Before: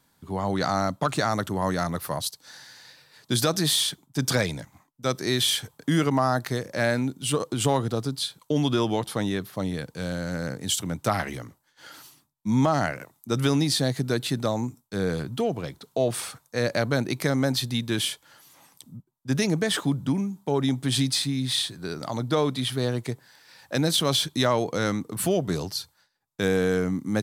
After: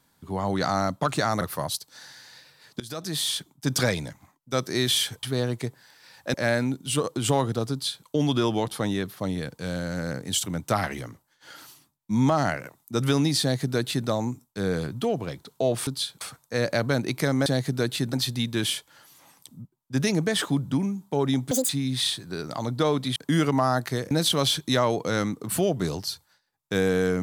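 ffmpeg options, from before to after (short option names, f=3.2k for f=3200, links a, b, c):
-filter_complex "[0:a]asplit=13[a][b][c][d][e][f][g][h][i][j][k][l][m];[a]atrim=end=1.412[n];[b]atrim=start=1.928:end=3.32,asetpts=PTS-STARTPTS,afade=t=out:st=1.388:d=0.004:c=hsin:silence=0.0707946[o];[c]atrim=start=3.32:end=5.752,asetpts=PTS-STARTPTS,afade=t=in:d=0.74:silence=0.0707946[p];[d]atrim=start=22.678:end=23.792[q];[e]atrim=start=6.698:end=16.232[r];[f]atrim=start=8.078:end=8.422[s];[g]atrim=start=16.228:end=17.482[t];[h]atrim=start=13.768:end=14.442[u];[i]atrim=start=17.478:end=20.864[v];[j]atrim=start=20.86:end=21.21,asetpts=PTS-STARTPTS,asetrate=85554,aresample=44100,atrim=end_sample=7956,asetpts=PTS-STARTPTS[w];[k]atrim=start=21.206:end=22.682[x];[l]atrim=start=5.748:end=6.702[y];[m]atrim=start=23.788[z];[o][p]concat=n=2:v=0:a=1[aa];[n][aa]acrossfade=d=0.004:c1=hsin:c2=hsin[ab];[ab][q]acrossfade=d=0.004:c1=hsin:c2=hsin[ac];[ac][r]acrossfade=d=0.004:c1=hsin:c2=hsin[ad];[ad][s]acrossfade=d=0.004:c1=hsin:c2=hsin[ae];[ae][t]acrossfade=d=0.004:c1=hsin:c2=hsin[af];[af][u]acrossfade=d=0.004:c1=hsin:c2=hsin[ag];[ag][v]acrossfade=d=0.004:c1=hsin:c2=hsin[ah];[ah][w]acrossfade=d=0.004:c1=hsin:c2=hsin[ai];[ai][x]acrossfade=d=0.004:c1=hsin:c2=hsin[aj];[aj][y]acrossfade=d=0.004:c1=hsin:c2=hsin[ak];[ak][z]acrossfade=d=0.004:c1=hsin:c2=hsin"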